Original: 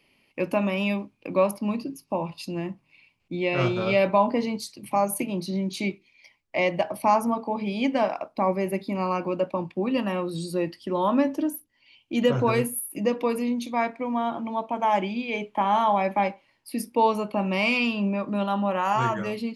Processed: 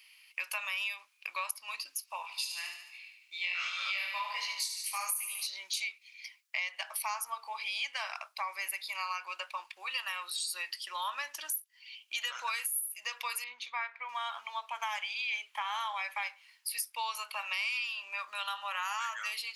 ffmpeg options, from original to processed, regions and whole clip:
-filter_complex "[0:a]asettb=1/sr,asplit=3[a][b][c];[a]atrim=end=2.224[d];[b]atrim=start=2.22:end=5.47,asetpts=PTS-STARTPTS,afade=t=in:d=0.004:c=qsin,afade=t=out:st=3.246:d=0.004:c=qsin,tiltshelf=f=1.1k:g=-3.5,aecho=1:1:73|146|219|292|365|438|511:0.447|0.259|0.15|0.0872|0.0505|0.0293|0.017,atrim=end_sample=143325,flanger=delay=18:depth=6.7:speed=1.3[e];[c]atrim=start=5.466[f];[d][e]acrossfade=d=0.004:c1=hsin:c2=qsin[g];[g][f]acrossfade=d=0.004:c1=qsin:c2=hsin,asettb=1/sr,asplit=3[h][i][j];[h]atrim=end=13.444[k];[i]atrim=start=13.44:end=14.09,asetpts=PTS-STARTPTS,afade=t=in:d=0.004:c=qsin,afade=t=out:st=0.646:d=0.004:c=qsin,lowpass=2.3k,equalizer=f=600:w=5.9:g=-5.5[l];[j]atrim=start=14.086[m];[k][l]acrossfade=d=0.004:c1=hsin:c2=qsin[n];[n][m]acrossfade=d=0.004:c1=qsin:c2=hsin,highpass=f=1.2k:w=0.5412,highpass=f=1.2k:w=1.3066,highshelf=f=3k:g=11,acompressor=threshold=-34dB:ratio=6,volume=1.5dB"

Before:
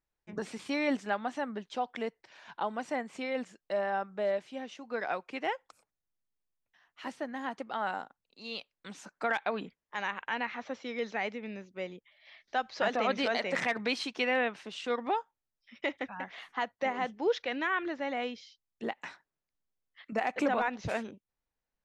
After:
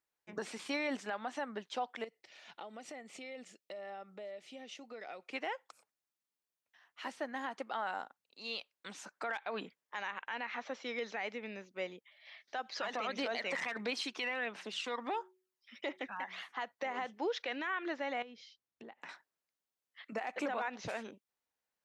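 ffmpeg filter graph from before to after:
-filter_complex "[0:a]asettb=1/sr,asplit=3[a][b][c];[a]atrim=end=2.044[d];[b]atrim=start=2.04:end=5.31,asetpts=PTS-STARTPTS,afade=t=in:d=0.004:c=qsin,afade=t=out:st=3.266:d=0.004:c=qsin,equalizer=f=1k:t=o:w=0.52:g=-12.5,bandreject=f=1.6k:w=5.1,acompressor=threshold=-42dB:ratio=6:attack=3.2:release=140:knee=1:detection=peak[e];[c]atrim=start=5.306[f];[d][e]acrossfade=d=0.004:c1=hsin:c2=qsin[g];[g][f]acrossfade=d=0.004:c1=qsin:c2=hsin,asettb=1/sr,asplit=3[h][i][j];[h]atrim=end=12.594[k];[i]atrim=start=12.59:end=16.42,asetpts=PTS-STARTPTS,afade=t=in:d=0.004:c=qsin,afade=t=out:st=3.826:d=0.004:c=qsin,highpass=140,bandreject=f=185.7:t=h:w=4,bandreject=f=371.4:t=h:w=4,aphaser=in_gain=1:out_gain=1:delay=1.1:decay=0.44:speed=1.5:type=triangular[l];[j]atrim=start=16.416[m];[k][l]acrossfade=d=0.004:c1=hsin:c2=qsin[n];[n][m]acrossfade=d=0.004:c1=qsin:c2=hsin,asettb=1/sr,asplit=3[o][p][q];[o]atrim=end=18.224[r];[p]atrim=start=18.22:end=19.09,asetpts=PTS-STARTPTS,afade=t=in:d=0.004:c=qsin,afade=t=out:st=0.866:d=0.004:c=qsin,lowpass=f=3.5k:p=1,lowshelf=f=320:g=10,acompressor=threshold=-45dB:ratio=8:attack=3.2:release=140:knee=1:detection=peak[s];[q]atrim=start=19.086[t];[r][s]acrossfade=d=0.004:c1=hsin:c2=qsin[u];[u][t]acrossfade=d=0.004:c1=qsin:c2=hsin,highpass=f=460:p=1,alimiter=level_in=4.5dB:limit=-24dB:level=0:latency=1:release=94,volume=-4.5dB,volume=1dB"

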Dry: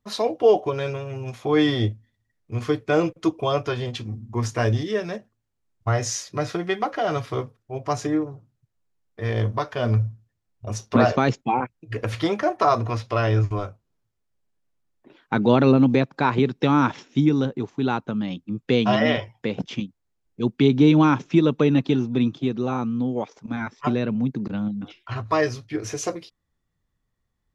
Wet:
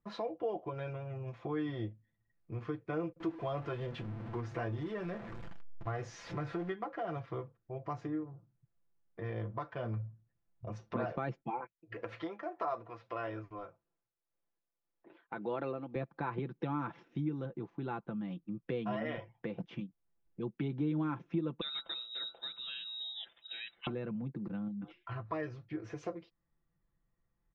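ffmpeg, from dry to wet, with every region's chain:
-filter_complex "[0:a]asettb=1/sr,asplit=3[a][b][c];[a]atrim=end=3.204[d];[b]atrim=start=3.2:end=6.72,asetpts=PTS-STARTPTS,afade=t=in:d=0.004:c=qsin,afade=t=out:st=3.516:d=0.004:c=qsin,aeval=exprs='val(0)+0.5*0.0355*sgn(val(0))':c=same,asplit=2[e][f];[f]adelay=21,volume=-13dB[g];[e][g]amix=inputs=2:normalize=0,atrim=end_sample=155232[h];[c]atrim=start=6.716[i];[d][h]acrossfade=d=0.004:c1=hsin:c2=qsin[j];[j][i]acrossfade=d=0.004:c1=qsin:c2=hsin,asettb=1/sr,asplit=3[k][l][m];[k]atrim=end=11.504[n];[l]atrim=start=11.5:end=15.96,asetpts=PTS-STARTPTS,afade=t=in:d=0.004:c=qsin,afade=t=out:st=4.456:d=0.004:c=qsin,bass=f=250:g=-12,treble=f=4k:g=2,tremolo=f=1.7:d=0.54[o];[m]atrim=start=15.956[p];[n][o]acrossfade=d=0.004:c1=hsin:c2=qsin[q];[q][p]acrossfade=d=0.004:c1=qsin:c2=hsin,asettb=1/sr,asplit=3[r][s][t];[r]atrim=end=21.614[u];[s]atrim=start=21.61:end=23.87,asetpts=PTS-STARTPTS,afade=t=in:d=0.004:c=qsin,afade=t=out:st=2.256:d=0.004:c=qsin,lowpass=f=3.4k:t=q:w=0.5098,lowpass=f=3.4k:t=q:w=0.6013,lowpass=f=3.4k:t=q:w=0.9,lowpass=f=3.4k:t=q:w=2.563,afreqshift=-4000,bandreject=f=71.03:t=h:w=4,bandreject=f=142.06:t=h:w=4,bandreject=f=213.09:t=h:w=4,bandreject=f=284.12:t=h:w=4,bandreject=f=355.15:t=h:w=4,bandreject=f=426.18:t=h:w=4,bandreject=f=497.21:t=h:w=4,bandreject=f=568.24:t=h:w=4,bandreject=f=639.27:t=h:w=4,bandreject=f=710.3:t=h:w=4,bandreject=f=781.33:t=h:w=4,bandreject=f=852.36:t=h:w=4,bandreject=f=923.39:t=h:w=4,bandreject=f=994.42:t=h:w=4,bandreject=f=1.06545k:t=h:w=4,bandreject=f=1.13648k:t=h:w=4,bandreject=f=1.20751k:t=h:w=4,bandreject=f=1.27854k:t=h:w=4,bandreject=f=1.34957k:t=h:w=4,bandreject=f=1.4206k:t=h:w=4,bandreject=f=1.49163k:t=h:w=4[v];[t]atrim=start=23.866[w];[u][v]acrossfade=d=0.004:c1=hsin:c2=qsin[x];[x][w]acrossfade=d=0.004:c1=qsin:c2=hsin,lowpass=2k,aecho=1:1:5.9:0.56,acompressor=threshold=-39dB:ratio=2,volume=-5dB"

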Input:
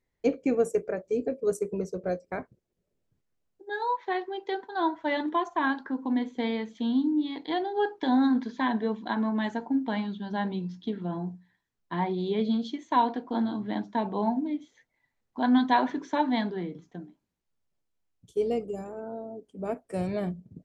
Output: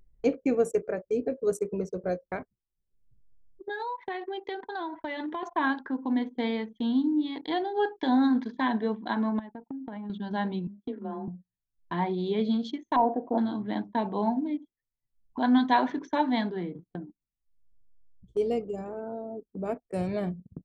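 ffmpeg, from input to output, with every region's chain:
-filter_complex "[0:a]asettb=1/sr,asplit=3[a][b][c];[a]atrim=end=2.364[d];[b]atrim=start=2.36:end=5.43,asetpts=PTS-STARTPTS,afade=t=in:d=0.004:c=qsin,afade=t=out:st=3.066:d=0.004:c=qsin,equalizer=f=2.4k:t=o:w=0.95:g=4,acompressor=threshold=-31dB:ratio=6:attack=3.2:release=140:knee=1:detection=peak[e];[c]atrim=start=5.426[f];[d][e]acrossfade=d=0.004:c1=hsin:c2=qsin[g];[g][f]acrossfade=d=0.004:c1=qsin:c2=hsin,asettb=1/sr,asplit=3[h][i][j];[h]atrim=end=9.394[k];[i]atrim=start=9.39:end=10.1,asetpts=PTS-STARTPTS,afade=t=in:d=0.004:c=qsin,afade=t=out:st=0.706:d=0.004:c=qsin,agate=range=-33dB:threshold=-33dB:ratio=3:release=100:detection=peak,highshelf=f=2.2k:g=-9.5,acompressor=threshold=-39dB:ratio=8:attack=3.2:release=140:knee=1:detection=peak[l];[j]atrim=start=10.096[m];[k][l]acrossfade=d=0.004:c1=hsin:c2=qsin[n];[n][m]acrossfade=d=0.004:c1=qsin:c2=hsin,asettb=1/sr,asplit=3[o][p][q];[o]atrim=end=10.674[r];[p]atrim=start=10.67:end=11.28,asetpts=PTS-STARTPTS,afade=t=in:d=0.004:c=qsin,afade=t=out:st=0.606:d=0.004:c=qsin,lowpass=f=1.3k:p=1,lowshelf=f=220:g=-10,afreqshift=23[s];[q]atrim=start=11.276[t];[r][s]acrossfade=d=0.004:c1=hsin:c2=qsin[u];[u][t]acrossfade=d=0.004:c1=qsin:c2=hsin,asettb=1/sr,asplit=3[v][w][x];[v]atrim=end=12.964[y];[w]atrim=start=12.96:end=13.38,asetpts=PTS-STARTPTS,afade=t=in:d=0.004:c=qsin,afade=t=out:st=0.416:d=0.004:c=qsin,volume=16.5dB,asoftclip=hard,volume=-16.5dB,lowpass=f=650:t=q:w=2.8[z];[x]atrim=start=13.376[aa];[y][z]acrossfade=d=0.004:c1=hsin:c2=qsin[ab];[ab][aa]acrossfade=d=0.004:c1=qsin:c2=hsin,agate=range=-9dB:threshold=-47dB:ratio=16:detection=peak,anlmdn=0.0158,acompressor=mode=upward:threshold=-31dB:ratio=2.5"

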